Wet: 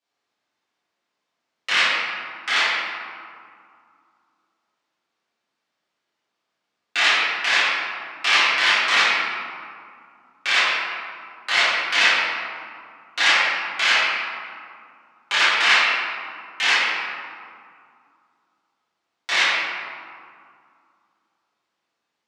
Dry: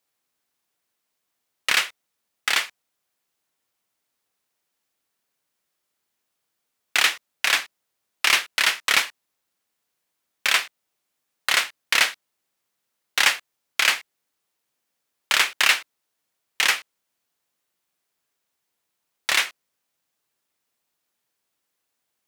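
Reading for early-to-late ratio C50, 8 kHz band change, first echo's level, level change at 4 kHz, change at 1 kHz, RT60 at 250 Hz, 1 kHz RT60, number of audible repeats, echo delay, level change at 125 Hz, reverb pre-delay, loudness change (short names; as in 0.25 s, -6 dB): -3.0 dB, -5.5 dB, none, +2.5 dB, +6.5 dB, 2.9 s, 2.4 s, none, none, n/a, 7 ms, +2.5 dB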